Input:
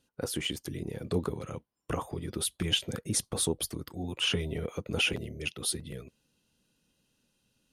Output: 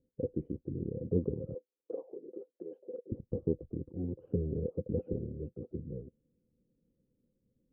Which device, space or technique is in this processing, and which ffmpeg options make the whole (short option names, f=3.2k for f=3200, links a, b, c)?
under water: -filter_complex "[0:a]asettb=1/sr,asplit=3[a][b][c];[a]atrim=end=1.544[d];[b]atrim=start=1.54:end=3.12,asetpts=PTS-STARTPTS,afade=t=in:d=0.004:c=qsin,afade=t=out:st=1.576:d=0.004:c=qsin,highpass=f=400:w=0.5412,highpass=f=400:w=1.3066[e];[c]atrim=start=3.116[f];[d][e]acrossfade=d=0.004:c1=hsin:c2=qsin[g];[g][f]acrossfade=d=0.004:c1=qsin:c2=hsin,lowpass=f=420:w=0.5412,lowpass=f=420:w=1.3066,equalizer=f=510:t=o:w=0.2:g=12"